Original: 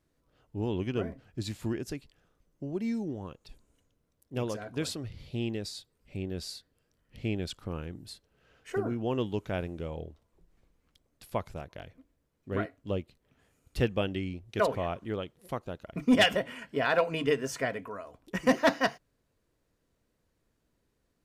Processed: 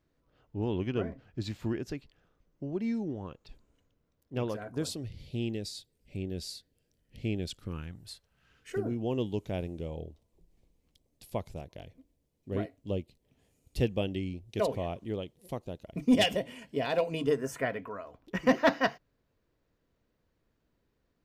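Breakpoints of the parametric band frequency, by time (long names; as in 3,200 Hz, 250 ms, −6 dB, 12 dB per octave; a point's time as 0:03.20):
parametric band −13.5 dB 0.98 octaves
0:04.44 10,000 Hz
0:05.00 1,200 Hz
0:07.53 1,200 Hz
0:08.09 220 Hz
0:08.95 1,400 Hz
0:17.13 1,400 Hz
0:17.80 9,500 Hz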